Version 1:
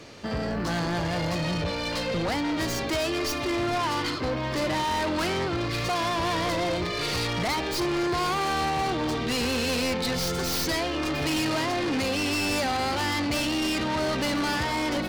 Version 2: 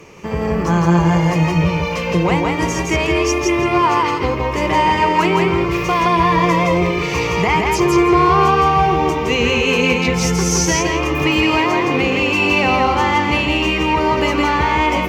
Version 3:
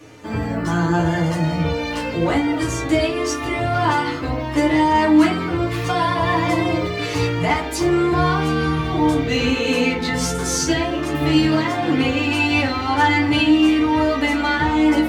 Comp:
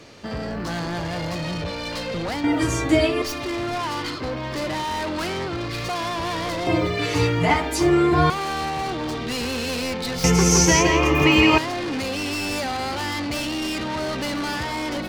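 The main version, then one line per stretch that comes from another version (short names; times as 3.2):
1
2.44–3.22 from 3
6.67–8.3 from 3
10.24–11.58 from 2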